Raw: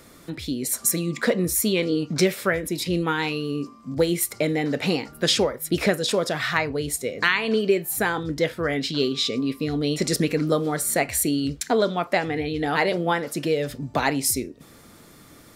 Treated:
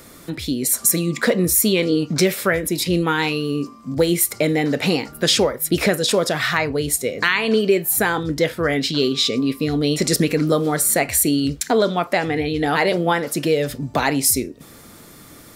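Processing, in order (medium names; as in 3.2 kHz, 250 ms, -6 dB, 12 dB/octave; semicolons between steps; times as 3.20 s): treble shelf 9.5 kHz +6 dB; in parallel at +2.5 dB: peak limiter -12.5 dBFS, peak gain reduction 9 dB; on the sum: trim -2.5 dB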